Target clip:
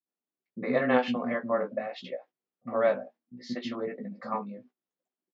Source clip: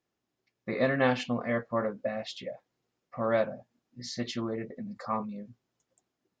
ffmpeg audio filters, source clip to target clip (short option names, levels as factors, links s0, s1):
-filter_complex "[0:a]highpass=f=190:w=0.5412,highpass=f=190:w=1.3066,agate=range=0.178:threshold=0.00158:ratio=16:detection=peak,lowpass=3300,lowshelf=f=460:g=4.5,atempo=1.2,asplit=2[s0][s1];[s1]adelay=16,volume=0.501[s2];[s0][s2]amix=inputs=2:normalize=0,acrossover=split=290[s3][s4];[s4]adelay=60[s5];[s3][s5]amix=inputs=2:normalize=0"